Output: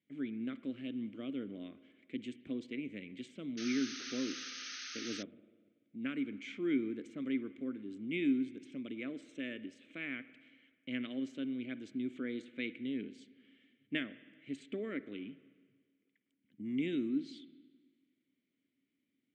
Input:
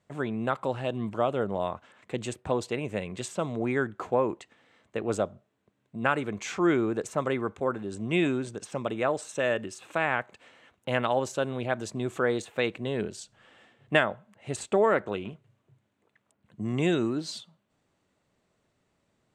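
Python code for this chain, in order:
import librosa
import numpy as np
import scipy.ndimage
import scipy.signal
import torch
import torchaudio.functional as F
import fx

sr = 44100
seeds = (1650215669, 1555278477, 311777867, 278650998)

y = fx.vowel_filter(x, sr, vowel='i')
y = fx.rev_spring(y, sr, rt60_s=1.6, pass_ms=(48, 54), chirp_ms=40, drr_db=15.5)
y = fx.spec_paint(y, sr, seeds[0], shape='noise', start_s=3.57, length_s=1.66, low_hz=1200.0, high_hz=6500.0, level_db=-47.0)
y = F.gain(torch.from_numpy(y), 1.5).numpy()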